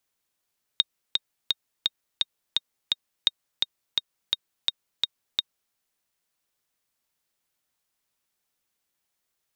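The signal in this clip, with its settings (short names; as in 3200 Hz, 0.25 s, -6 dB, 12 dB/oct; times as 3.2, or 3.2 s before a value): metronome 170 bpm, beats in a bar 7, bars 2, 3720 Hz, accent 3.5 dB -5.5 dBFS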